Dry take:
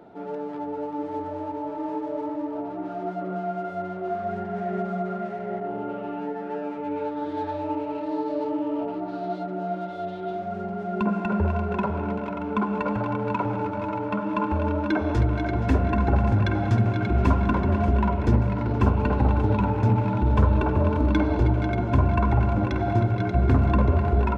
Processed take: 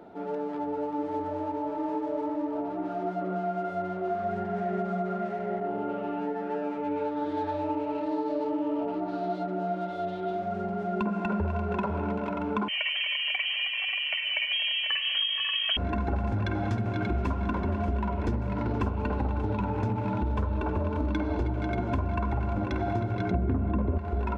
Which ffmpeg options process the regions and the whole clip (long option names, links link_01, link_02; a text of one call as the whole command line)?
ffmpeg -i in.wav -filter_complex "[0:a]asettb=1/sr,asplit=3[link_01][link_02][link_03];[link_01]atrim=end=12.684[link_04];[link_02]atrim=start=12.68:end=15.77,asetpts=PTS-STARTPTS,afade=type=in:duration=0.004:curve=qsin,afade=type=out:start_time=3.086:duration=0.004:curve=qsin,equalizer=frequency=170:width_type=o:width=0.89:gain=-8,lowpass=frequency=2800:width_type=q:width=0.5098,lowpass=frequency=2800:width_type=q:width=0.6013,lowpass=frequency=2800:width_type=q:width=0.9,lowpass=frequency=2800:width_type=q:width=2.563,afreqshift=-3300[link_05];[link_03]atrim=start=15.766[link_06];[link_04][link_05]acrossfade=duration=0.004:curve1=hsin:curve2=qsin[link_07];[link_07][link_06]acrossfade=duration=0.004:curve1=qsin:curve2=hsin,asettb=1/sr,asplit=3[link_08][link_09][link_10];[link_08]atrim=end=23.314[link_11];[link_09]atrim=start=23.31:end=23.98,asetpts=PTS-STARTPTS,afade=type=in:duration=0.004:curve=qsin,afade=type=out:start_time=0.666:duration=0.004:curve=qsin,lowpass=frequency=3400:width=0.5412,lowpass=frequency=3400:width=1.3066,equalizer=frequency=190:width=0.31:gain=11[link_12];[link_10]atrim=start=23.976[link_13];[link_11][link_12]acrossfade=duration=0.004:curve1=hsin:curve2=qsin[link_14];[link_14][link_13]acrossfade=duration=0.004:curve1=qsin:curve2=hsin,equalizer=frequency=130:width=5.3:gain=-9.5,acompressor=threshold=-25dB:ratio=6" out.wav